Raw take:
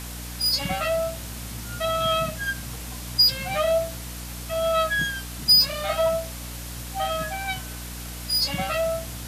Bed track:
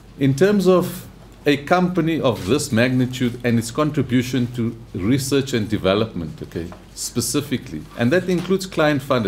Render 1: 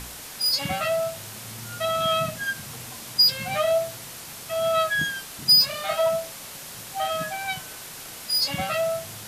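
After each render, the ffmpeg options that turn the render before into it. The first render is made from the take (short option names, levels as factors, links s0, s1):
-af "bandreject=f=60:t=h:w=4,bandreject=f=120:t=h:w=4,bandreject=f=180:t=h:w=4,bandreject=f=240:t=h:w=4,bandreject=f=300:t=h:w=4,bandreject=f=360:t=h:w=4,bandreject=f=420:t=h:w=4,bandreject=f=480:t=h:w=4,bandreject=f=540:t=h:w=4,bandreject=f=600:t=h:w=4"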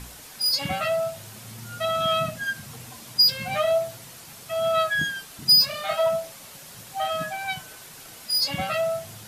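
-af "afftdn=nr=6:nf=-40"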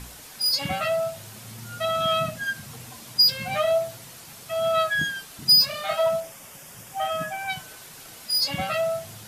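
-filter_complex "[0:a]asettb=1/sr,asplit=3[s0][s1][s2];[s0]atrim=end=6.204[s3];[s1]atrim=start=6.2:end=7.5,asetpts=PTS-STARTPTS,afade=t=in:d=0.004:c=qsin,afade=t=out:st=1.296:d=0.004:c=qsin,equalizer=f=4100:w=6.1:g=-14.5[s4];[s2]atrim=start=7.496[s5];[s3][s4]acrossfade=d=0.004:c1=hsin:c2=qsin[s6];[s6][s5]acrossfade=d=0.004:c1=qsin:c2=hsin"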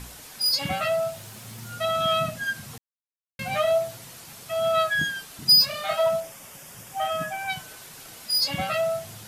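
-filter_complex "[0:a]asettb=1/sr,asplit=3[s0][s1][s2];[s0]atrim=end=0.604[s3];[s1]atrim=start=0.6:end=1.75,asetpts=PTS-STARTPTS,afade=t=in:d=0.004:c=qsin,afade=t=out:st=1.146:d=0.004:c=qsin,aeval=exprs='val(0)*gte(abs(val(0)),0.00316)':c=same[s4];[s2]atrim=start=1.746[s5];[s3][s4]acrossfade=d=0.004:c1=hsin:c2=qsin[s6];[s6][s5]acrossfade=d=0.004:c1=qsin:c2=hsin,asplit=3[s7][s8][s9];[s7]atrim=end=2.78,asetpts=PTS-STARTPTS,afade=t=out:st=2.776:d=0.004:c=hsin[s10];[s8]atrim=start=2.78:end=3.39,asetpts=PTS-STARTPTS,volume=0[s11];[s9]atrim=start=3.39,asetpts=PTS-STARTPTS,afade=t=in:d=0.004:c=hsin[s12];[s10][s11][s12]concat=n=3:v=0:a=1"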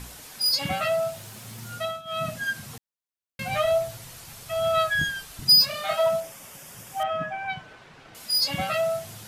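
-filter_complex "[0:a]asplit=3[s0][s1][s2];[s0]afade=t=out:st=3.49:d=0.02[s3];[s1]asubboost=boost=4.5:cutoff=100,afade=t=in:st=3.49:d=0.02,afade=t=out:st=5.48:d=0.02[s4];[s2]afade=t=in:st=5.48:d=0.02[s5];[s3][s4][s5]amix=inputs=3:normalize=0,asettb=1/sr,asplit=3[s6][s7][s8];[s6]atrim=end=7.034[s9];[s7]atrim=start=7.03:end=8.15,asetpts=PTS-STARTPTS,afade=t=in:d=0.004:c=qsin,afade=t=out:st=1.116:d=0.004:c=qsin,lowpass=2500[s10];[s8]atrim=start=8.146[s11];[s9][s10]acrossfade=d=0.004:c1=hsin:c2=qsin[s12];[s12][s11]acrossfade=d=0.004:c1=qsin:c2=hsin,asplit=3[s13][s14][s15];[s13]atrim=end=2.02,asetpts=PTS-STARTPTS,afade=t=out:st=1.76:d=0.26:silence=0.1[s16];[s14]atrim=start=2.02:end=2.05,asetpts=PTS-STARTPTS,volume=0.1[s17];[s15]atrim=start=2.05,asetpts=PTS-STARTPTS,afade=t=in:d=0.26:silence=0.1[s18];[s16][s17][s18]concat=n=3:v=0:a=1"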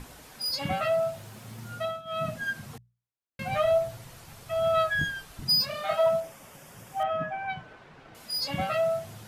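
-af "highshelf=f=2400:g=-9.5,bandreject=f=60:t=h:w=6,bandreject=f=120:t=h:w=6,bandreject=f=180:t=h:w=6"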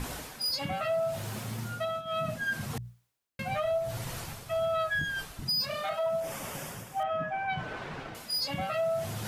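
-af "areverse,acompressor=mode=upward:threshold=0.0447:ratio=2.5,areverse,alimiter=limit=0.0708:level=0:latency=1:release=198"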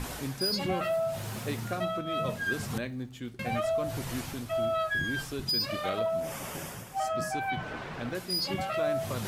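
-filter_complex "[1:a]volume=0.112[s0];[0:a][s0]amix=inputs=2:normalize=0"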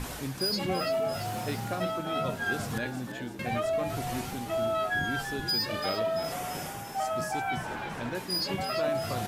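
-filter_complex "[0:a]asplit=7[s0][s1][s2][s3][s4][s5][s6];[s1]adelay=339,afreqshift=73,volume=0.355[s7];[s2]adelay=678,afreqshift=146,volume=0.191[s8];[s3]adelay=1017,afreqshift=219,volume=0.104[s9];[s4]adelay=1356,afreqshift=292,volume=0.0556[s10];[s5]adelay=1695,afreqshift=365,volume=0.0302[s11];[s6]adelay=2034,afreqshift=438,volume=0.0162[s12];[s0][s7][s8][s9][s10][s11][s12]amix=inputs=7:normalize=0"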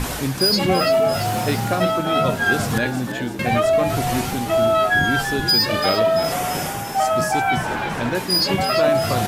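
-af "volume=3.98"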